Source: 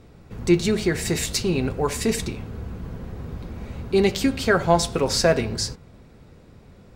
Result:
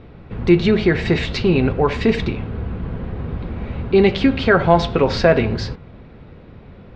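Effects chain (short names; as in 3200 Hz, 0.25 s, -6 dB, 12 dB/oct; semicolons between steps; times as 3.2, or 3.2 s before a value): LPF 3500 Hz 24 dB/oct; in parallel at 0 dB: limiter -15 dBFS, peak gain reduction 9 dB; on the sum: gain +1.5 dB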